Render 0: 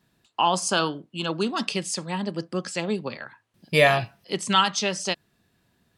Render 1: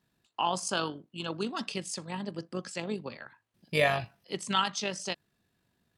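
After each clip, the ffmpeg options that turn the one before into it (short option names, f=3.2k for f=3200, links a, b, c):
-af "tremolo=f=49:d=0.4,volume=-6dB"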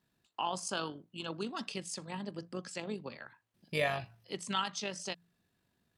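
-filter_complex "[0:a]bandreject=f=57.49:t=h:w=4,bandreject=f=114.98:t=h:w=4,bandreject=f=172.47:t=h:w=4,asplit=2[a][b];[b]acompressor=threshold=-37dB:ratio=6,volume=-2dB[c];[a][c]amix=inputs=2:normalize=0,volume=-7.5dB"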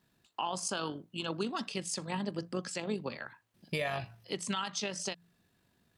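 -af "alimiter=level_in=4.5dB:limit=-24dB:level=0:latency=1:release=139,volume=-4.5dB,volume=5.5dB"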